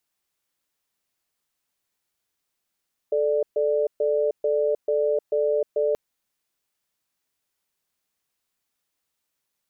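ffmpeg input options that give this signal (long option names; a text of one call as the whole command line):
ffmpeg -f lavfi -i "aevalsrc='0.0794*(sin(2*PI*437*t)+sin(2*PI*591*t))*clip(min(mod(t,0.44),0.31-mod(t,0.44))/0.005,0,1)':duration=2.83:sample_rate=44100" out.wav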